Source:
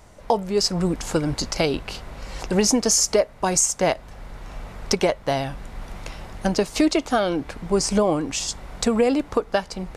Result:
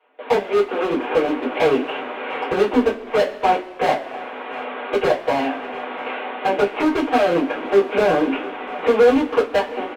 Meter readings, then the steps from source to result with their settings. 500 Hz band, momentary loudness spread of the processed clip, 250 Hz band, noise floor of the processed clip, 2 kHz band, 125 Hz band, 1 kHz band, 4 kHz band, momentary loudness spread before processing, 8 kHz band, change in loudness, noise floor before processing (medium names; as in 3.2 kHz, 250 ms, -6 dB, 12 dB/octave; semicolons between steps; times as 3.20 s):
+5.5 dB, 11 LU, +1.0 dB, -35 dBFS, +6.5 dB, -8.5 dB, +6.5 dB, -4.5 dB, 19 LU, under -20 dB, +2.0 dB, -44 dBFS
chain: CVSD coder 16 kbps; gate with hold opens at -36 dBFS; steep high-pass 240 Hz 96 dB/octave; dynamic bell 1.2 kHz, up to -3 dB, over -36 dBFS, Q 1.4; in parallel at -1.5 dB: compression, threshold -32 dBFS, peak gain reduction 15.5 dB; on the sum: overload inside the chain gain 21.5 dB; delay 697 ms -22 dB; two-slope reverb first 0.2 s, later 1.7 s, from -22 dB, DRR -8 dB